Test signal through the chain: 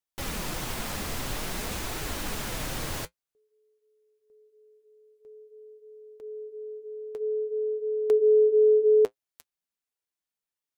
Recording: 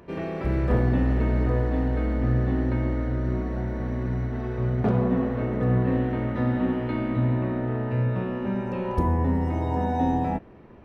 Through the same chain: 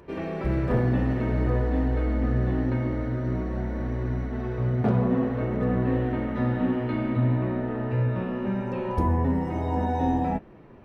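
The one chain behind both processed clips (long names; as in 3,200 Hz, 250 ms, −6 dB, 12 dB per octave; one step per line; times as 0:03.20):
flanger 0.5 Hz, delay 2 ms, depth 7.5 ms, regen −50%
level +3.5 dB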